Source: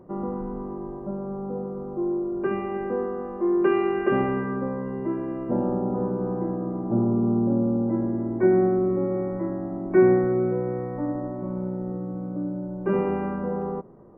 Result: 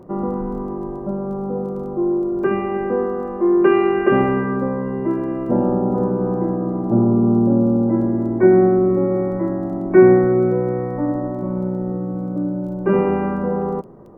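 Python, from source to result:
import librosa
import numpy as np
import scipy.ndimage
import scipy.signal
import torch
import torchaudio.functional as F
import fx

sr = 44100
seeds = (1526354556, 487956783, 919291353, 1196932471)

y = fx.dmg_crackle(x, sr, seeds[0], per_s=10.0, level_db=-48.0)
y = F.gain(torch.from_numpy(y), 7.0).numpy()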